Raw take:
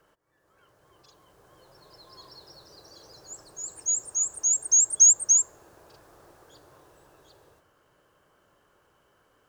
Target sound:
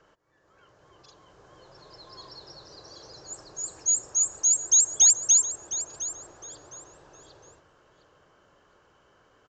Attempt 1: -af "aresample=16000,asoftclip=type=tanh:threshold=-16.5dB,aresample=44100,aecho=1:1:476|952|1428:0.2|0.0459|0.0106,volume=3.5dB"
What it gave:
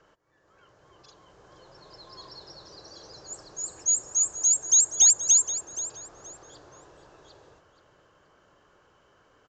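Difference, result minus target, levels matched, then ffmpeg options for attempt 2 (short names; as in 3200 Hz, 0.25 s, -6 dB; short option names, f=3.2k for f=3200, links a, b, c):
echo 0.235 s early
-af "aresample=16000,asoftclip=type=tanh:threshold=-16.5dB,aresample=44100,aecho=1:1:711|1422|2133:0.2|0.0459|0.0106,volume=3.5dB"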